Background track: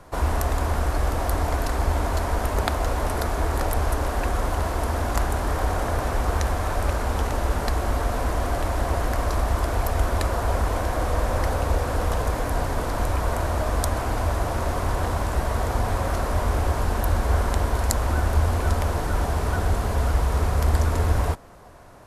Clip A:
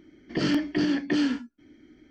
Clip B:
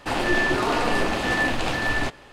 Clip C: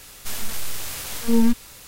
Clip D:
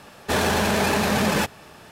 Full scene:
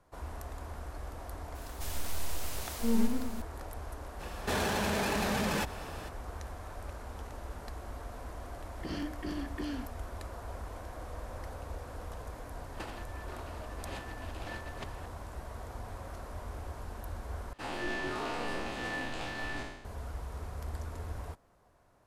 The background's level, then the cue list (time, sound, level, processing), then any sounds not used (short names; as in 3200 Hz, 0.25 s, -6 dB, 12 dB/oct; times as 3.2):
background track -19 dB
1.55 add C -11.5 dB + warbling echo 0.116 s, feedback 61%, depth 198 cents, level -6 dB
4.19 add D -0.5 dB, fades 0.02 s + compressor 2.5:1, threshold -32 dBFS
8.48 add A -14 dB
12.74 add B -15.5 dB + negative-ratio compressor -29 dBFS, ratio -0.5
17.53 replace with B -16 dB + spectral trails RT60 0.92 s